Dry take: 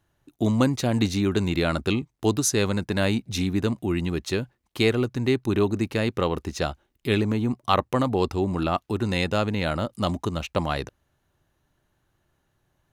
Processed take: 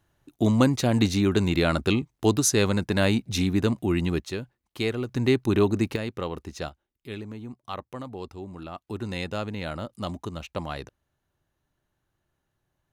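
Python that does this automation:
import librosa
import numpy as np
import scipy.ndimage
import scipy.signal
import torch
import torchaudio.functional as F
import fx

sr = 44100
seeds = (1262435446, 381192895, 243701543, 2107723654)

y = fx.gain(x, sr, db=fx.steps((0.0, 1.0), (4.2, -6.0), (5.09, 1.0), (5.96, -7.0), (6.69, -14.0), (8.87, -7.0)))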